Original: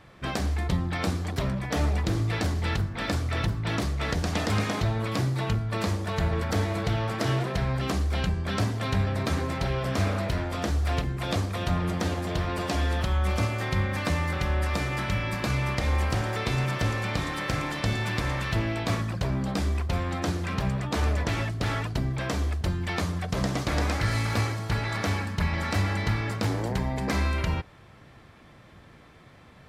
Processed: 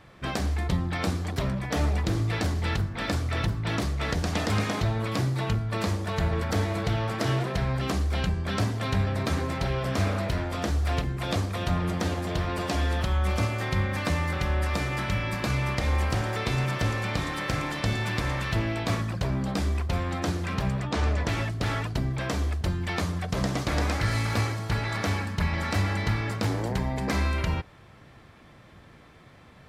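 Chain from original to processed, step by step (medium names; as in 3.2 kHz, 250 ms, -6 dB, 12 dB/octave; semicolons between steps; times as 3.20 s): 20.83–21.24 s: low-pass 7 kHz 12 dB/octave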